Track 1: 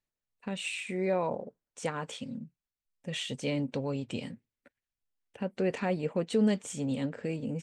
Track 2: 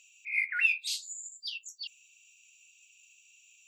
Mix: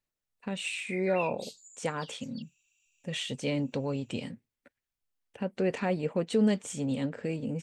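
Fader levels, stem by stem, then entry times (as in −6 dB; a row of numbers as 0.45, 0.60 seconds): +1.0, −12.5 decibels; 0.00, 0.55 seconds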